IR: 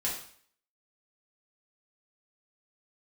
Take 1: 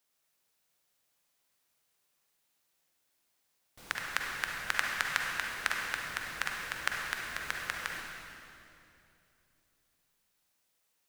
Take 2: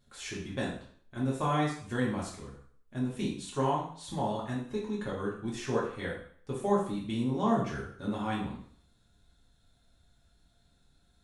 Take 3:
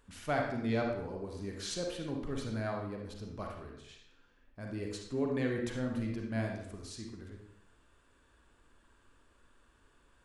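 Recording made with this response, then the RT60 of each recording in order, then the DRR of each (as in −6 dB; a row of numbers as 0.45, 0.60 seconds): 2; 2.8, 0.55, 0.75 seconds; −0.5, −5.5, 0.5 decibels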